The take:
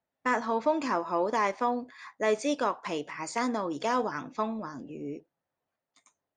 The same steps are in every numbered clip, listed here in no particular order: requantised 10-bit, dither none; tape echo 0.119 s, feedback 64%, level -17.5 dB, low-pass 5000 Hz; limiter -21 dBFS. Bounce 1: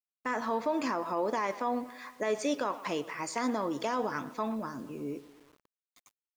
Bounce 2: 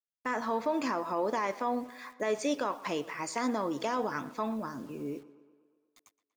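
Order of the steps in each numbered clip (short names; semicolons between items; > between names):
tape echo > requantised > limiter; requantised > limiter > tape echo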